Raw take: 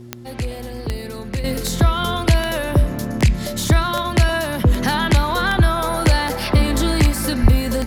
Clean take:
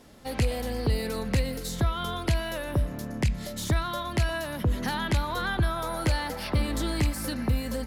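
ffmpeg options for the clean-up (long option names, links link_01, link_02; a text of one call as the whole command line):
ffmpeg -i in.wav -filter_complex "[0:a]adeclick=threshold=4,bandreject=frequency=119.7:width_type=h:width=4,bandreject=frequency=239.4:width_type=h:width=4,bandreject=frequency=359.1:width_type=h:width=4,asplit=3[link_01][link_02][link_03];[link_01]afade=type=out:start_time=7.42:duration=0.02[link_04];[link_02]highpass=frequency=140:width=0.5412,highpass=frequency=140:width=1.3066,afade=type=in:start_time=7.42:duration=0.02,afade=type=out:start_time=7.54:duration=0.02[link_05];[link_03]afade=type=in:start_time=7.54:duration=0.02[link_06];[link_04][link_05][link_06]amix=inputs=3:normalize=0,asetnsamples=nb_out_samples=441:pad=0,asendcmd='1.44 volume volume -10.5dB',volume=0dB" out.wav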